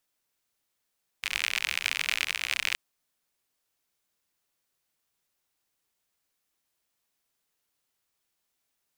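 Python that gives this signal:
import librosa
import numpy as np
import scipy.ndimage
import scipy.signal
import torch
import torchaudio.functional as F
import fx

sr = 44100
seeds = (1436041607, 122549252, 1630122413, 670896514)

y = fx.rain(sr, seeds[0], length_s=1.52, drops_per_s=65.0, hz=2400.0, bed_db=-26)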